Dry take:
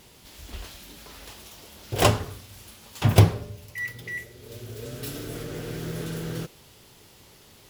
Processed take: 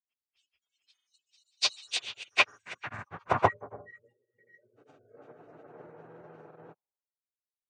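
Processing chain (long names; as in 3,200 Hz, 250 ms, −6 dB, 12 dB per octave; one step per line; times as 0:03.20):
hearing-aid frequency compression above 1,800 Hz 1.5 to 1
noise reduction from a noise print of the clip's start 28 dB
granular cloud, spray 477 ms, pitch spread up and down by 0 semitones
band-pass filter sweep 4,500 Hz → 810 Hz, 0:01.63–0:03.78
multiband upward and downward expander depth 100%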